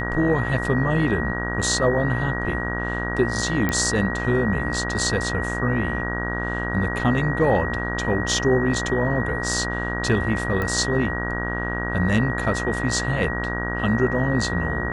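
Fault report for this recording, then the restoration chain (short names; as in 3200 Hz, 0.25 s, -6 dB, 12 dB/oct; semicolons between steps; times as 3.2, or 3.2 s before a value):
buzz 60 Hz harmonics 29 -28 dBFS
tone 1900 Hz -28 dBFS
3.69 pop -9 dBFS
10.62 pop -14 dBFS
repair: de-click; de-hum 60 Hz, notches 29; notch 1900 Hz, Q 30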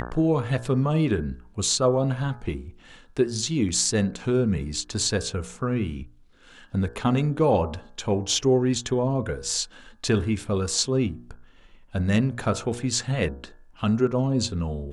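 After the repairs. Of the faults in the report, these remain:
none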